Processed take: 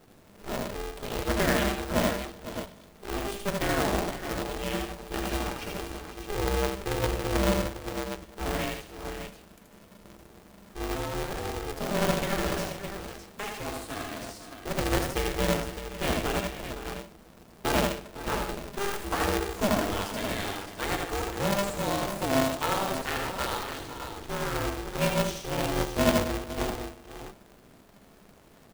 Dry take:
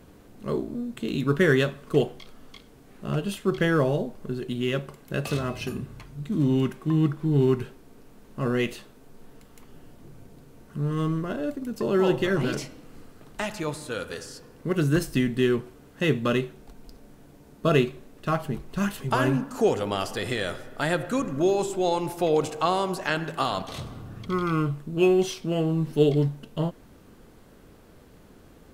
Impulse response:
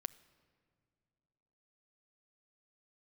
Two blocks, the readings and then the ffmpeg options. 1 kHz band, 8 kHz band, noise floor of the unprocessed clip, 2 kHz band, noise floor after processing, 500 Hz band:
0.0 dB, +5.5 dB, -52 dBFS, -1.0 dB, -55 dBFS, -4.5 dB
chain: -filter_complex "[0:a]aecho=1:1:78|80|149|506|555|613:0.355|0.596|0.335|0.237|0.119|0.376,acrusher=bits=2:mode=log:mix=0:aa=0.000001[s0];[1:a]atrim=start_sample=2205,asetrate=70560,aresample=44100[s1];[s0][s1]afir=irnorm=-1:irlink=0,aeval=exprs='val(0)*sgn(sin(2*PI*200*n/s))':c=same"

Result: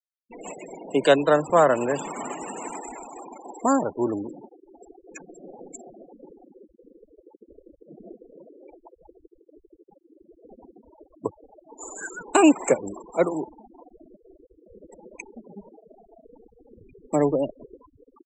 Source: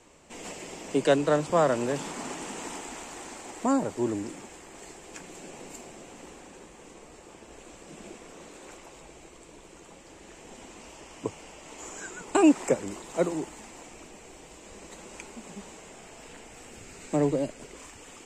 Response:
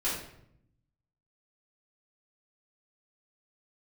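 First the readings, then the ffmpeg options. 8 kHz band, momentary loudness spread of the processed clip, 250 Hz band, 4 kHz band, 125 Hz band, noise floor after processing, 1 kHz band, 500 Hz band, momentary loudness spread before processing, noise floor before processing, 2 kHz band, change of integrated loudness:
+2.0 dB, 23 LU, +2.5 dB, +3.0 dB, 0.0 dB, -65 dBFS, +6.0 dB, +4.5 dB, 23 LU, -51 dBFS, +5.0 dB, +5.0 dB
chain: -af "afftfilt=real='re*gte(hypot(re,im),0.0178)':imag='im*gte(hypot(re,im),0.0178)':win_size=1024:overlap=0.75,lowshelf=f=330:g=-9,bandreject=f=1900:w=19,volume=2.37"

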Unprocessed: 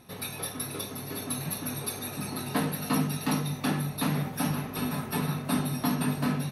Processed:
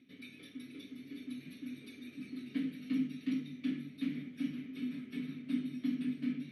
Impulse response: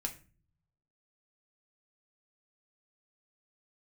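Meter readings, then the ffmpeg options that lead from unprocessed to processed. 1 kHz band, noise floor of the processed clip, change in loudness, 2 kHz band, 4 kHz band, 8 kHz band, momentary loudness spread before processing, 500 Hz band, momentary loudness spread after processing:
under -30 dB, -56 dBFS, -9.5 dB, -14.0 dB, -16.0 dB, under -30 dB, 6 LU, -20.0 dB, 13 LU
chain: -filter_complex "[0:a]areverse,acompressor=mode=upward:threshold=0.02:ratio=2.5,areverse,asplit=3[s0][s1][s2];[s0]bandpass=f=270:t=q:w=8,volume=1[s3];[s1]bandpass=f=2290:t=q:w=8,volume=0.501[s4];[s2]bandpass=f=3010:t=q:w=8,volume=0.355[s5];[s3][s4][s5]amix=inputs=3:normalize=0,volume=0.891"

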